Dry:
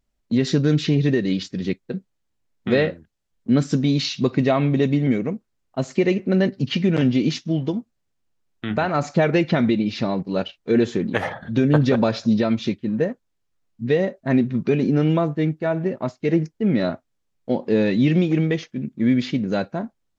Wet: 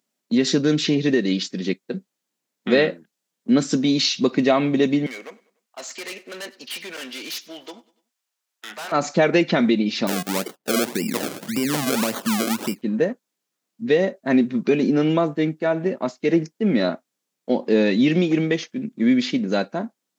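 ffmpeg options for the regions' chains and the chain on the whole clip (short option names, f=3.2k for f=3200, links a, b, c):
-filter_complex "[0:a]asettb=1/sr,asplit=3[a][b][c];[a]atrim=end=5.064[d];[b]atrim=start=5.06:end=8.92,asetpts=PTS-STARTPTS,afade=t=in:d=0.004:c=qsin,afade=t=out:st=3.856:d=0.004:c=qsin,highpass=860,volume=33.5dB,asoftclip=hard,volume=-33.5dB,aecho=1:1:97|194|291:0.0794|0.0373|0.0175,atrim=end_sample=170226[e];[c]atrim=start=8.916[f];[d][e]acrossfade=d=0.004:c1=hsin:c2=qsin[g];[g][f]acrossfade=d=0.004:c1=qsin:c2=hsin,asettb=1/sr,asplit=3[h][i][j];[h]atrim=end=10.074[k];[i]atrim=start=10.07:end=12.82,asetpts=PTS-STARTPTS,afade=t=in:d=0.004:c=qsin,afade=t=out:st=2.746:d=0.004:c=qsin,lowshelf=f=250:g=5,acompressor=threshold=-22dB:ratio=2.5:attack=3.2:release=140:knee=1:detection=peak,acrusher=samples=33:mix=1:aa=0.000001:lfo=1:lforange=33:lforate=1.8[l];[j]atrim=start=12.816[m];[k][l]acrossfade=d=0.004:c1=hsin:c2=qsin[n];[n][m]acrossfade=d=0.004:c1=qsin:c2=hsin,highpass=f=190:w=0.5412,highpass=f=190:w=1.3066,highshelf=f=4.3k:g=8,volume=1.5dB"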